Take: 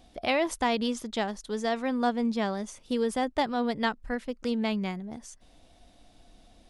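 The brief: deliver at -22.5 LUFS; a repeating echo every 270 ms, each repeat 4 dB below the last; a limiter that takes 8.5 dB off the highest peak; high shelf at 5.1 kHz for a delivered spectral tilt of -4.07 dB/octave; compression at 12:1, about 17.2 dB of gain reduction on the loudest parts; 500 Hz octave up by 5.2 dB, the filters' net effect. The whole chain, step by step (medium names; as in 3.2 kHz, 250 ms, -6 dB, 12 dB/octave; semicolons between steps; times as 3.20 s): peaking EQ 500 Hz +6 dB; treble shelf 5.1 kHz +6 dB; compression 12:1, threshold -36 dBFS; peak limiter -33 dBFS; feedback delay 270 ms, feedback 63%, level -4 dB; trim +18.5 dB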